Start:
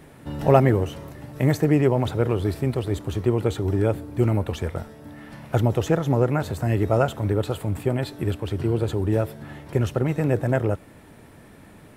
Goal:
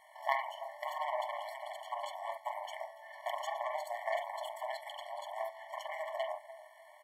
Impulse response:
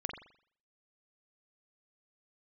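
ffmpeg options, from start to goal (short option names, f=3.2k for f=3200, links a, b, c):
-filter_complex "[0:a]asplit=2[a][b];[b]adelay=505,lowpass=f=1.8k:p=1,volume=-19dB,asplit=2[c][d];[d]adelay=505,lowpass=f=1.8k:p=1,volume=0.5,asplit=2[e][f];[f]adelay=505,lowpass=f=1.8k:p=1,volume=0.5,asplit=2[g][h];[h]adelay=505,lowpass=f=1.8k:p=1,volume=0.5[i];[a][c][e][g][i]amix=inputs=5:normalize=0,aeval=exprs='0.841*(cos(1*acos(clip(val(0)/0.841,-1,1)))-cos(1*PI/2))+0.376*(cos(3*acos(clip(val(0)/0.841,-1,1)))-cos(3*PI/2))+0.0335*(cos(4*acos(clip(val(0)/0.841,-1,1)))-cos(4*PI/2))+0.0266*(cos(7*acos(clip(val(0)/0.841,-1,1)))-cos(7*PI/2))+0.0335*(cos(8*acos(clip(val(0)/0.841,-1,1)))-cos(8*PI/2))':c=same,highshelf=f=3.4k:g=-6.5[j];[1:a]atrim=start_sample=2205,afade=t=out:st=0.16:d=0.01,atrim=end_sample=7497,asetrate=35280,aresample=44100[k];[j][k]afir=irnorm=-1:irlink=0,atempo=1.7,lowshelf=f=410:g=-12,acompressor=threshold=-29dB:ratio=5,afftfilt=real='re*eq(mod(floor(b*sr/1024/580),2),1)':imag='im*eq(mod(floor(b*sr/1024/580),2),1)':win_size=1024:overlap=0.75,volume=4dB"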